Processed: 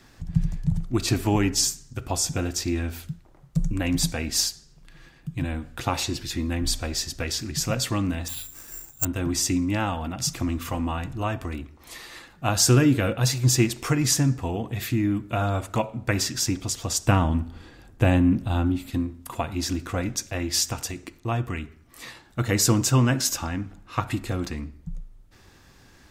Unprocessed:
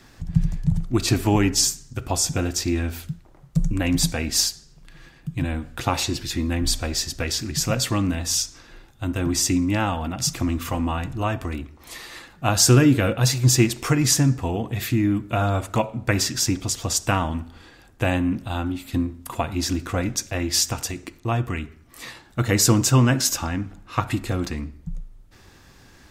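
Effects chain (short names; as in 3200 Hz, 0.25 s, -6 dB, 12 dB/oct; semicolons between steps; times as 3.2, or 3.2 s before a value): 8.28–9.05 careless resampling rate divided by 6×, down filtered, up zero stuff; 17.07–18.91 low shelf 470 Hz +8 dB; gain -3 dB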